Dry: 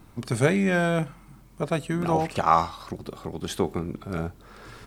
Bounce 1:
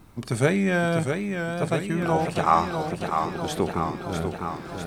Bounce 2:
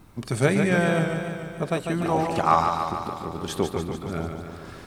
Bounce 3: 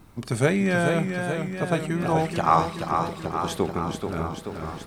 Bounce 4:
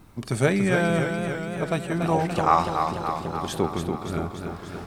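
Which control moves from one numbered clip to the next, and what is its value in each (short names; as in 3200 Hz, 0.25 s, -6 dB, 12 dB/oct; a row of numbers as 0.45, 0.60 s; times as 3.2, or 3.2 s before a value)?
warbling echo, time: 0.65, 0.146, 0.432, 0.288 s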